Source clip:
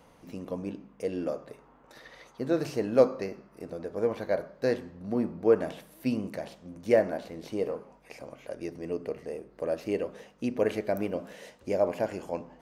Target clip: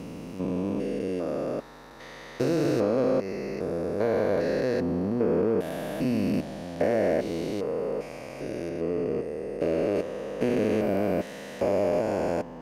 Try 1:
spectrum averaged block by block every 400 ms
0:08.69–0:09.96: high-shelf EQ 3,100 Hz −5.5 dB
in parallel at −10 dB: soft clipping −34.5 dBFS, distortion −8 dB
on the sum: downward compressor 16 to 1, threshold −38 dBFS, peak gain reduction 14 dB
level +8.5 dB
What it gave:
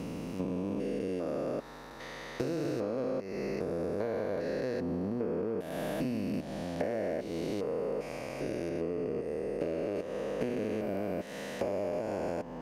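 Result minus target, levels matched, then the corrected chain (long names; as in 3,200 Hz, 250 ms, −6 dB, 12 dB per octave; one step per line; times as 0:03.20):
downward compressor: peak gain reduction +9.5 dB
spectrum averaged block by block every 400 ms
0:08.69–0:09.96: high-shelf EQ 3,100 Hz −5.5 dB
in parallel at −10 dB: soft clipping −34.5 dBFS, distortion −8 dB
on the sum: downward compressor 16 to 1, threshold −28 dBFS, peak gain reduction 4.5 dB
level +8.5 dB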